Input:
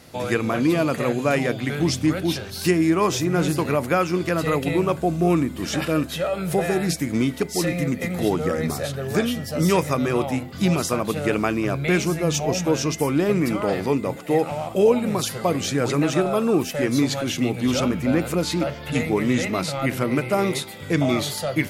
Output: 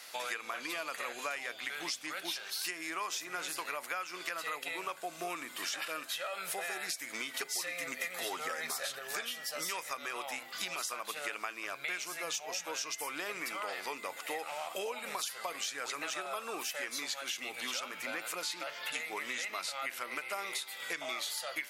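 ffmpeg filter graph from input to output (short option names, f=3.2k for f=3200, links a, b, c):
-filter_complex "[0:a]asettb=1/sr,asplit=3[a][b][c];[a]atrim=end=7.344[d];[b]atrim=start=7.34:end=8.99,asetpts=PTS-STARTPTS,afade=t=in:d=0.004:c=qsin,afade=t=out:st=1.646:d=0.004:c=qsin,aecho=1:1:7.5:0.44,atrim=end_sample=72765,acontrast=32[e];[c]atrim=start=8.986[f];[d][e]acrossfade=d=0.004:c1=hsin:c2=qsin[g];[g][f]acrossfade=d=0.004:c1=qsin:c2=hsin,highpass=1.2k,acompressor=threshold=-38dB:ratio=6,volume=2.5dB"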